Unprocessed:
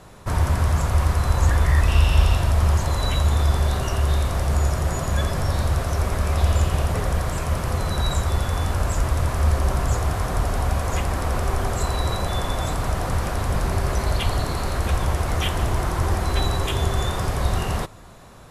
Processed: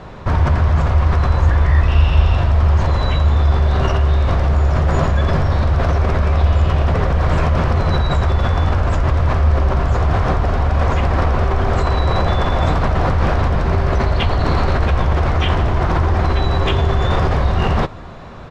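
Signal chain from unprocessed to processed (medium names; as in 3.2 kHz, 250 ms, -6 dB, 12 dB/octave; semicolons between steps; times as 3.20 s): in parallel at -1 dB: compressor with a negative ratio -25 dBFS, ratio -0.5; on the sum: distance through air 210 m; doubling 13 ms -13 dB; trim +3 dB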